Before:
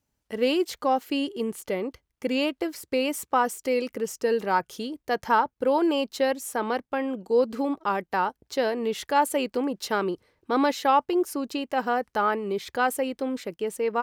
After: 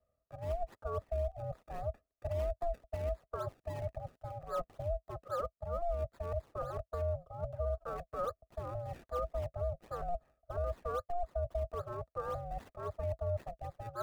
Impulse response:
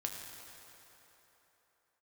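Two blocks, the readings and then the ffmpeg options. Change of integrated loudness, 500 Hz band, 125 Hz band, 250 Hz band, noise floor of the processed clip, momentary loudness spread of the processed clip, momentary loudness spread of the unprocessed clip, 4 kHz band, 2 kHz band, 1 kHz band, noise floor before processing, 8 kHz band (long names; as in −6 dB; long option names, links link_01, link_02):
−13.5 dB, −11.5 dB, can't be measured, −28.0 dB, below −85 dBFS, 7 LU, 8 LU, below −25 dB, −24.5 dB, −16.5 dB, −80 dBFS, below −25 dB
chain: -filter_complex "[0:a]areverse,acompressor=threshold=-36dB:ratio=5,areverse,asplit=3[link_01][link_02][link_03];[link_01]bandpass=frequency=300:width_type=q:width=8,volume=0dB[link_04];[link_02]bandpass=frequency=870:width_type=q:width=8,volume=-6dB[link_05];[link_03]bandpass=frequency=2240:width_type=q:width=8,volume=-9dB[link_06];[link_04][link_05][link_06]amix=inputs=3:normalize=0,aeval=exprs='val(0)*sin(2*PI*350*n/s)':channel_layout=same,acrossover=split=100|1700[link_07][link_08][link_09];[link_09]acrusher=samples=29:mix=1:aa=0.000001:lfo=1:lforange=29:lforate=3.7[link_10];[link_07][link_08][link_10]amix=inputs=3:normalize=0,alimiter=level_in=18dB:limit=-24dB:level=0:latency=1:release=126,volume=-18dB,volume=15.5dB"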